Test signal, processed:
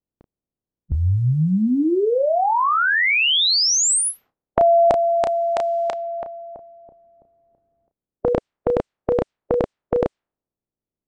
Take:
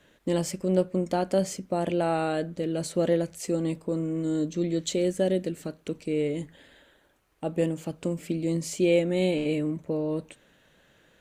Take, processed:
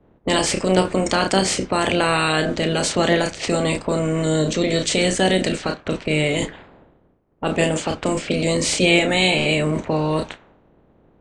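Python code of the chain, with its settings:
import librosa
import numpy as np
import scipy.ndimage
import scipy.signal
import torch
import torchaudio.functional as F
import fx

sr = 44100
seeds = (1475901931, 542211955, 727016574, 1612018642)

p1 = fx.spec_clip(x, sr, under_db=19)
p2 = scipy.signal.sosfilt(scipy.signal.ellip(4, 1.0, 80, 8600.0, 'lowpass', fs=sr, output='sos'), p1)
p3 = fx.doubler(p2, sr, ms=32.0, db=-9)
p4 = fx.over_compress(p3, sr, threshold_db=-37.0, ratio=-1.0)
p5 = p3 + (p4 * librosa.db_to_amplitude(-1.5))
p6 = fx.env_lowpass(p5, sr, base_hz=350.0, full_db=-23.0)
y = p6 * librosa.db_to_amplitude(6.5)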